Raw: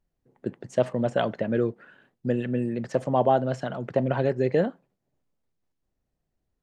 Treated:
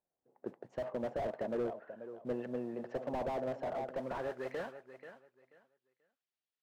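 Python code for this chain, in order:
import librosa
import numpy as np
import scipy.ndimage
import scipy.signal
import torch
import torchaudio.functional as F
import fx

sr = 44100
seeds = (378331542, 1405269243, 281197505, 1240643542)

p1 = scipy.signal.sosfilt(scipy.signal.butter(2, 6000.0, 'lowpass', fs=sr, output='sos'), x)
p2 = fx.mod_noise(p1, sr, seeds[0], snr_db=24)
p3 = 10.0 ** (-26.5 / 20.0) * np.tanh(p2 / 10.0 ** (-26.5 / 20.0))
p4 = p2 + (p3 * 10.0 ** (-5.5 / 20.0))
p5 = fx.filter_sweep_bandpass(p4, sr, from_hz=700.0, to_hz=3300.0, start_s=3.66, end_s=5.34, q=1.4)
p6 = p5 + fx.echo_feedback(p5, sr, ms=485, feedback_pct=22, wet_db=-13.5, dry=0)
p7 = fx.slew_limit(p6, sr, full_power_hz=23.0)
y = p7 * 10.0 ** (-5.5 / 20.0)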